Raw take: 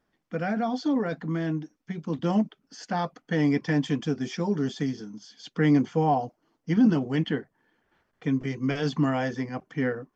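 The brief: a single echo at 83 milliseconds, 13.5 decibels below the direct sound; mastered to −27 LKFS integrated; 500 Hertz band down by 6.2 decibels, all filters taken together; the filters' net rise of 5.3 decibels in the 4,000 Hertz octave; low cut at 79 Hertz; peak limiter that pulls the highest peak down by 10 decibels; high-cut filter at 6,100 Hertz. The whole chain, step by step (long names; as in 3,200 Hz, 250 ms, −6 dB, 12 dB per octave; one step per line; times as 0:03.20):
high-pass filter 79 Hz
low-pass filter 6,100 Hz
parametric band 500 Hz −8 dB
parametric band 4,000 Hz +8 dB
brickwall limiter −23.5 dBFS
single-tap delay 83 ms −13.5 dB
level +6 dB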